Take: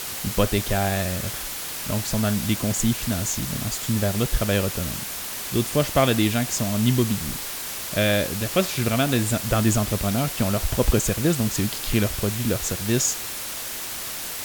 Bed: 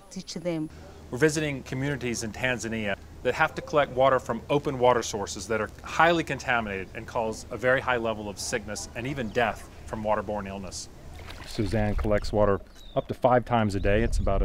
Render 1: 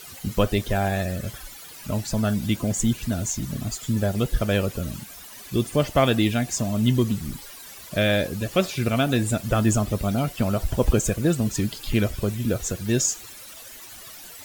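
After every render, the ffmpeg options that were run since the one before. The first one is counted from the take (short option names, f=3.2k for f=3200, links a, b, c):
-af "afftdn=nr=14:nf=-32"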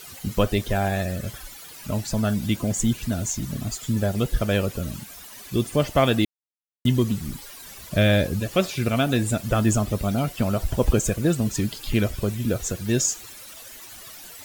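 -filter_complex "[0:a]asettb=1/sr,asplit=3[a][b][c];[a]atrim=end=7.594[d];[b]atrim=start=7.59:end=8.4,asetpts=PTS-STARTPTS,afade=t=in:d=0.004:c=qsin,afade=t=out:st=0.806:d=0.004:c=qsin,lowshelf=f=170:g=9[e];[c]atrim=start=8.396[f];[d][e]acrossfade=d=0.004:c1=hsin:c2=qsin[g];[g][f]acrossfade=d=0.004:c1=qsin:c2=hsin,asplit=3[h][i][j];[h]atrim=end=6.25,asetpts=PTS-STARTPTS,afade=t=out:st=6.246:d=0.004:c=hsin[k];[i]atrim=start=6.25:end=6.85,asetpts=PTS-STARTPTS,volume=0[l];[j]atrim=start=6.85,asetpts=PTS-STARTPTS,afade=t=in:d=0.004:c=hsin[m];[k][l][m]concat=n=3:v=0:a=1"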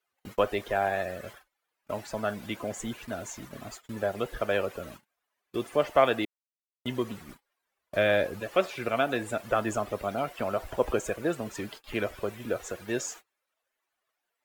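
-filter_complex "[0:a]acrossover=split=380 2500:gain=0.112 1 0.2[a][b][c];[a][b][c]amix=inputs=3:normalize=0,agate=range=-33dB:threshold=-44dB:ratio=16:detection=peak"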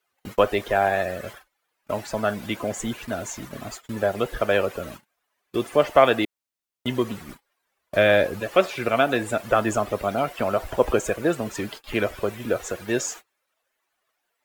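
-af "volume=6.5dB,alimiter=limit=-3dB:level=0:latency=1"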